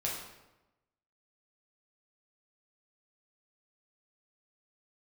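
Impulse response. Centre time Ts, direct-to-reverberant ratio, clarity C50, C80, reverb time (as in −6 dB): 52 ms, −4.0 dB, 2.5 dB, 5.5 dB, 1.0 s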